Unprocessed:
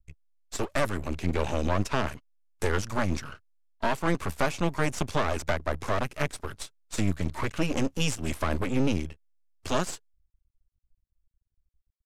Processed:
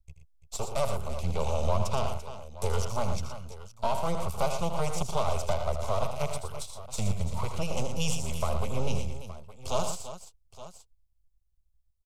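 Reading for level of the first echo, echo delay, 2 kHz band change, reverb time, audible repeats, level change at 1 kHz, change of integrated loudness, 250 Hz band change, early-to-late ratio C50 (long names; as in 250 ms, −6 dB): −9.5 dB, 80 ms, −10.5 dB, no reverb audible, 4, −0.5 dB, −2.5 dB, −8.0 dB, no reverb audible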